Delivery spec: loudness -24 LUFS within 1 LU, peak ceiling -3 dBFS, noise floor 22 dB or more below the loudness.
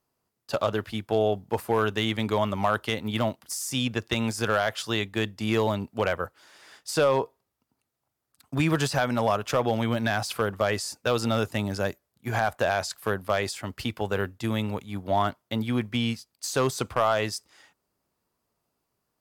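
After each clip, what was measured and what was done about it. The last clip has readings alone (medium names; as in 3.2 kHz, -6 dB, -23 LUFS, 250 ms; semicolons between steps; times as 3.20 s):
clipped samples 0.3%; clipping level -14.0 dBFS; loudness -27.5 LUFS; peak level -14.0 dBFS; loudness target -24.0 LUFS
-> clip repair -14 dBFS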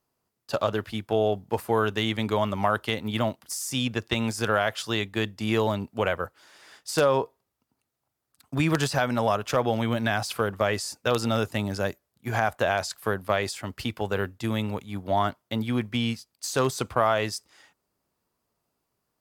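clipped samples 0.0%; loudness -27.0 LUFS; peak level -5.0 dBFS; loudness target -24.0 LUFS
-> trim +3 dB; peak limiter -3 dBFS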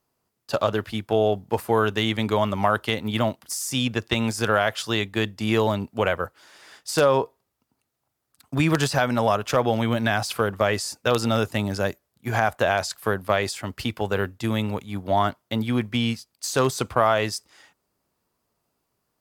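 loudness -24.0 LUFS; peak level -3.0 dBFS; noise floor -78 dBFS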